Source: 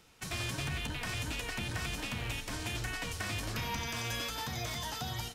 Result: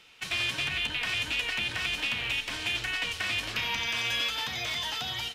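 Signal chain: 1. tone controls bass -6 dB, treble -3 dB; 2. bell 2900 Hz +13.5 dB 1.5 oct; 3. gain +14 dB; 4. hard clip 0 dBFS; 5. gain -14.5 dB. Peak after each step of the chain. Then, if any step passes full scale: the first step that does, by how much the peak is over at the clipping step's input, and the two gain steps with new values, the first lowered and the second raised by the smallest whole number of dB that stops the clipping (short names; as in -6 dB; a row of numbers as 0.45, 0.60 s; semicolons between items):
-25.5, -16.5, -2.5, -2.5, -17.0 dBFS; no overload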